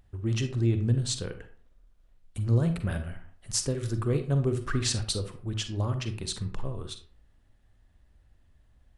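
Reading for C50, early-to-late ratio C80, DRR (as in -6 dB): 10.0 dB, 14.5 dB, 8.0 dB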